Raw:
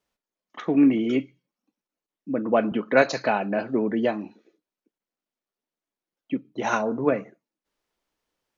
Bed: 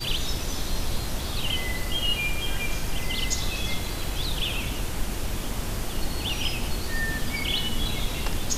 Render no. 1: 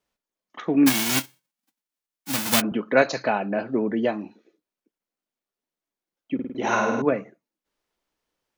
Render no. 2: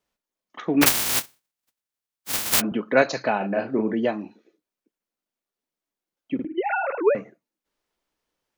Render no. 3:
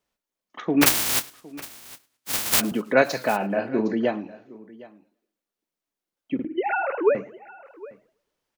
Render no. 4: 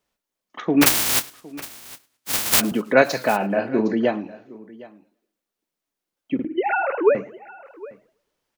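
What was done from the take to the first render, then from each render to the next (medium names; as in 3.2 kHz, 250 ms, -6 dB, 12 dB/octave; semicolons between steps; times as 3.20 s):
0.86–2.60 s: formants flattened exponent 0.1; 3.23–3.73 s: distance through air 67 m; 6.34–7.02 s: flutter echo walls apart 8.9 m, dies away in 1 s
0.81–2.59 s: spectral contrast reduction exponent 0.19; 3.37–3.94 s: doubling 36 ms -6 dB; 6.45–7.15 s: formants replaced by sine waves
delay 761 ms -20.5 dB; modulated delay 109 ms, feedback 40%, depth 169 cents, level -22.5 dB
trim +3 dB; peak limiter -1 dBFS, peak gain reduction 2.5 dB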